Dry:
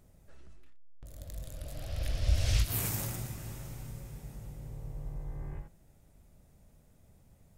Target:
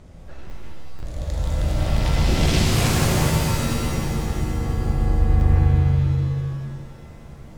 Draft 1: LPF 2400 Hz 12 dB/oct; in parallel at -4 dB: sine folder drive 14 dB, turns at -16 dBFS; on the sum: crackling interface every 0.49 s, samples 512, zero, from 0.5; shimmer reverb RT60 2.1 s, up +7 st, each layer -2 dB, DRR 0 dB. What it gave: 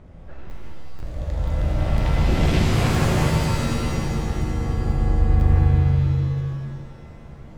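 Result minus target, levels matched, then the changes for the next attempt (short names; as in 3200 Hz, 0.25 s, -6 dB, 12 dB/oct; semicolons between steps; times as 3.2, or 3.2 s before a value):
4000 Hz band -4.0 dB
change: LPF 5000 Hz 12 dB/oct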